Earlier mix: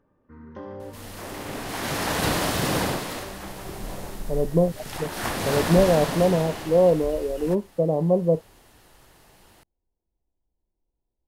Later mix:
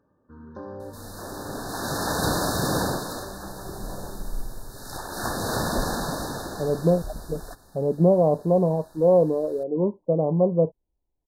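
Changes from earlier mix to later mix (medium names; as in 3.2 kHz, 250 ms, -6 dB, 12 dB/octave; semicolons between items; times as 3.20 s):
speech: entry +2.30 s; master: add brick-wall FIR band-stop 1.8–3.6 kHz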